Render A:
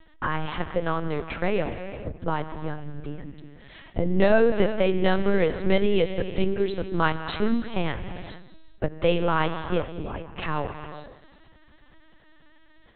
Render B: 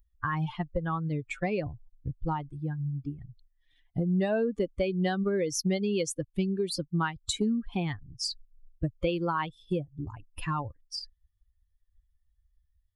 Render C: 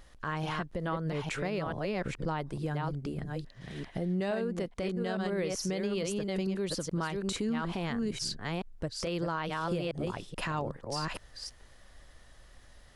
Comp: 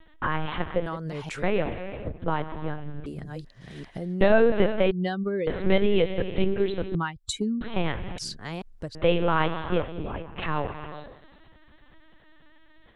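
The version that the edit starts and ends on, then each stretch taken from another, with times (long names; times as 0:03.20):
A
0:00.86–0:01.43: punch in from C
0:03.06–0:04.21: punch in from C
0:04.91–0:05.47: punch in from B
0:06.95–0:07.61: punch in from B
0:08.18–0:08.95: punch in from C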